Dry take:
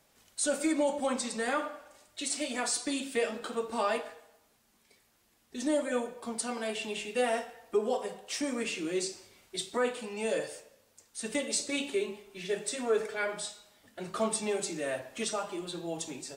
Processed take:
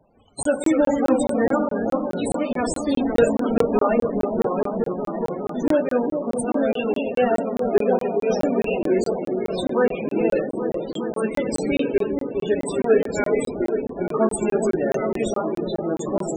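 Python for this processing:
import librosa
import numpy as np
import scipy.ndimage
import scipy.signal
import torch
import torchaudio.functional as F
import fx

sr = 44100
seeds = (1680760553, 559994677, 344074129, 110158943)

p1 = fx.halfwave_hold(x, sr, at=(2.94, 3.63), fade=0.02)
p2 = fx.sample_hold(p1, sr, seeds[0], rate_hz=2100.0, jitter_pct=20)
p3 = p1 + F.gain(torch.from_numpy(p2), -3.0).numpy()
p4 = fx.echo_pitch(p3, sr, ms=193, semitones=-2, count=3, db_per_echo=-6.0)
p5 = p4 + fx.echo_opening(p4, sr, ms=411, hz=750, octaves=1, feedback_pct=70, wet_db=-6, dry=0)
p6 = fx.spec_topn(p5, sr, count=32)
p7 = fx.buffer_crackle(p6, sr, first_s=0.43, period_s=0.21, block=1024, kind='zero')
y = F.gain(torch.from_numpy(p7), 6.5).numpy()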